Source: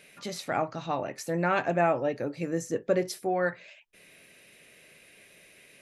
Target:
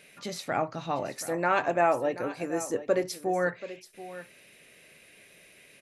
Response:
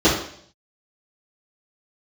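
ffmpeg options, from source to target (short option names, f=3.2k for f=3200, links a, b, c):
-filter_complex "[0:a]asettb=1/sr,asplit=3[a][b][c];[a]atrim=end=1.154[d];[b]atrim=start=1.15:end=3.04,asetpts=PTS-STARTPTS,afade=t=in:d=0.004:c=qsin,afade=t=out:st=1.886:d=0.004:c=qsin,equalizer=f=160:t=o:w=0.67:g=-9,equalizer=f=1k:t=o:w=0.67:g=4,equalizer=f=10k:t=o:w=0.67:g=9[e];[c]atrim=start=3.036[f];[d][e]acrossfade=d=0.004:c1=hsin:c2=qsin[g];[g][f]acrossfade=d=0.004:c1=qsin:c2=hsin,aecho=1:1:731:0.188"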